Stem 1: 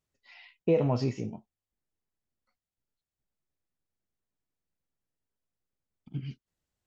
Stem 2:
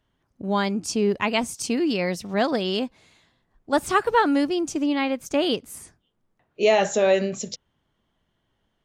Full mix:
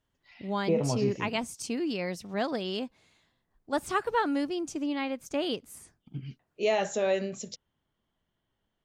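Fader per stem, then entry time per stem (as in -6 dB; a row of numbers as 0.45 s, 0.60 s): -2.5 dB, -8.0 dB; 0.00 s, 0.00 s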